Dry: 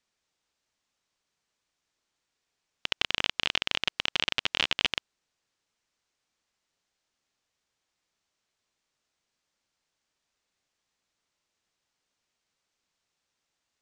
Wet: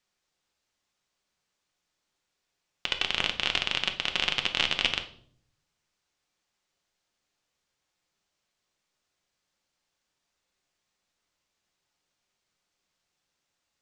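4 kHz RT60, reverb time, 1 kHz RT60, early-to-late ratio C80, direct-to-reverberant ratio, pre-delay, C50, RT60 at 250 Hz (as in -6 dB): 0.45 s, 0.60 s, 0.50 s, 17.0 dB, 5.0 dB, 6 ms, 12.0 dB, 0.85 s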